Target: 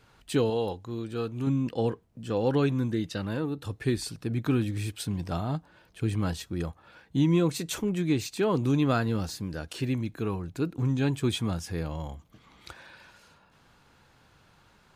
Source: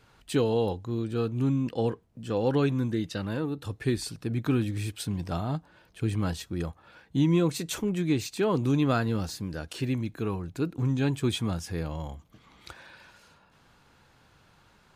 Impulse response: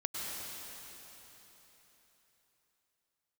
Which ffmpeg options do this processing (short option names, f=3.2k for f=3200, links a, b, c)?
-filter_complex "[0:a]asettb=1/sr,asplit=3[a][b][c];[a]atrim=end=0.504[d];[b]atrim=start=0.5:end=1.47,asetpts=PTS-STARTPTS,afade=t=in:d=0.004:c=qsin,afade=t=out:st=0.966:d=0.004:c=qsin,lowshelf=f=380:g=-6[e];[c]atrim=start=1.466[f];[d][e]acrossfade=d=0.004:c1=hsin:c2=qsin[g];[g][f]acrossfade=d=0.004:c1=qsin:c2=hsin"